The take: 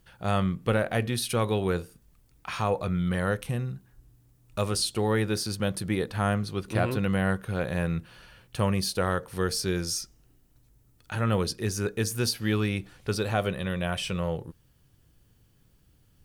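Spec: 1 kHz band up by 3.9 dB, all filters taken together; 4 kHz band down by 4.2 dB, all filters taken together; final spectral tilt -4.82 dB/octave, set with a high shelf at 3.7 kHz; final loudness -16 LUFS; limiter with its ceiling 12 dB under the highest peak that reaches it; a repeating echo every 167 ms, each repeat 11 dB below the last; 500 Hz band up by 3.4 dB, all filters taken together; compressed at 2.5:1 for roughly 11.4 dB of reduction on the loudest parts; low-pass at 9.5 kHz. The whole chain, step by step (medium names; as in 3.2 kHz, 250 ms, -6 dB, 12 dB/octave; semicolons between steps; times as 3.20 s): low-pass 9.5 kHz; peaking EQ 500 Hz +3 dB; peaking EQ 1 kHz +4.5 dB; treble shelf 3.7 kHz +4 dB; peaking EQ 4 kHz -8.5 dB; compression 2.5:1, threshold -36 dBFS; peak limiter -32 dBFS; feedback delay 167 ms, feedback 28%, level -11 dB; trim +25.5 dB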